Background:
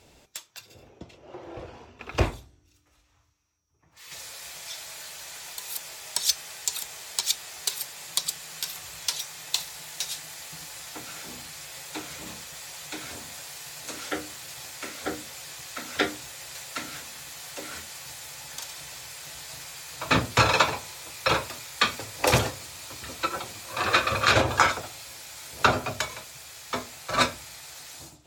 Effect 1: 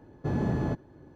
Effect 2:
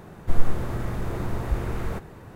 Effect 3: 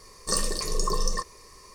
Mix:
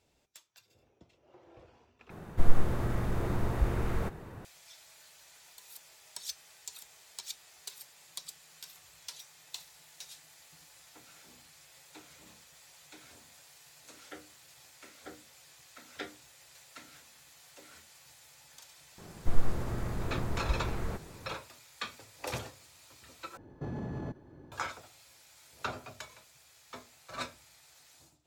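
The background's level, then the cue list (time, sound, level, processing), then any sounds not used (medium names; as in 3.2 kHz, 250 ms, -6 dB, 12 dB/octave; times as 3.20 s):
background -16.5 dB
2.10 s: replace with 2 -2.5 dB
18.98 s: add 2 -6 dB
23.37 s: replace with 1 -1.5 dB + peak limiter -29.5 dBFS
not used: 3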